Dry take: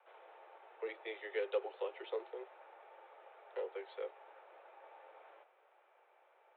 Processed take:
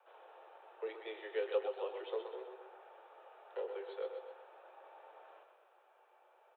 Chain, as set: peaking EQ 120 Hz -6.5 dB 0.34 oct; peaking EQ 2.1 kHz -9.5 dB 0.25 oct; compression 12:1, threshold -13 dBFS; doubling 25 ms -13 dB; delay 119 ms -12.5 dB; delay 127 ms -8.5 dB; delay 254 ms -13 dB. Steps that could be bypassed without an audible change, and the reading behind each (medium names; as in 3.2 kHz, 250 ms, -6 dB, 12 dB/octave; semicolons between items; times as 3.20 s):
peaking EQ 120 Hz: input has nothing below 300 Hz; compression, threshold -13 dBFS: peak at its input -25.0 dBFS